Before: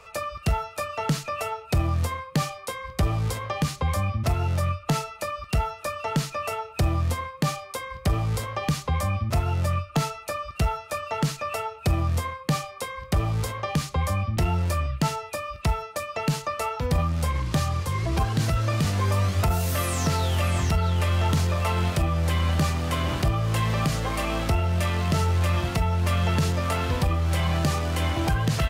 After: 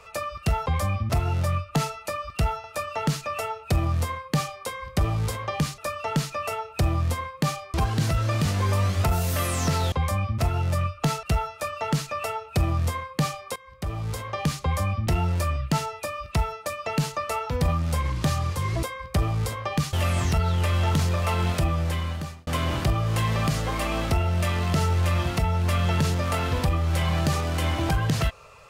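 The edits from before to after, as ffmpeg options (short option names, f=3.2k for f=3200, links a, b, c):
-filter_complex "[0:a]asplit=11[a][b][c][d][e][f][g][h][i][j][k];[a]atrim=end=0.662[l];[b]atrim=start=3.798:end=5.782[m];[c]atrim=start=0.658:end=3.802[n];[d]atrim=start=5.778:end=7.742[o];[e]atrim=start=18.128:end=20.312[p];[f]atrim=start=8.838:end=10.152[q];[g]atrim=start=10.528:end=12.86,asetpts=PTS-STARTPTS,afade=t=out:st=2.328:d=0.004:c=hsin:silence=0.141254[r];[h]atrim=start=12.86:end=18.132,asetpts=PTS-STARTPTS,afade=t=in:d=0.9:silence=0.141254[s];[i]atrim=start=7.738:end=8.842[t];[j]atrim=start=20.308:end=22.85,asetpts=PTS-STARTPTS,afade=t=out:st=1.782:d=0.76[u];[k]atrim=start=22.85,asetpts=PTS-STARTPTS,afade=t=in:d=0.004:c=hsin[v];[l][m]acrossfade=d=0.004:c1=hsin:c2=hsin[w];[w][n]acrossfade=d=0.004:c1=hsin:c2=hsin[x];[x][o]acrossfade=d=0.004:c1=hsin:c2=hsin[y];[y][p]acrossfade=d=0.004:c1=hsin:c2=hsin[z];[z][q]acrossfade=d=0.004:c1=hsin:c2=hsin[aa];[r][s]concat=n=2:v=0:a=1[ab];[aa][ab]acrossfade=d=0.004:c1=hsin:c2=hsin[ac];[ac][t]acrossfade=d=0.004:c1=hsin:c2=hsin[ad];[u][v]concat=n=2:v=0:a=1[ae];[ad][ae]acrossfade=d=0.004:c1=hsin:c2=hsin"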